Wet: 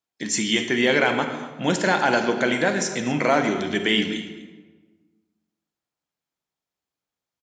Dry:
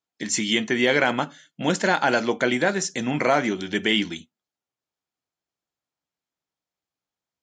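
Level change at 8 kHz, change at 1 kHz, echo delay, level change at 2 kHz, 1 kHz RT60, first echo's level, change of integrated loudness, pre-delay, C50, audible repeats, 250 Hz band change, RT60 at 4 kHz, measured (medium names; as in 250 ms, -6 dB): +0.5 dB, +1.0 dB, 247 ms, +1.0 dB, 1.3 s, -17.0 dB, +1.0 dB, 35 ms, 7.0 dB, 1, +1.0 dB, 0.80 s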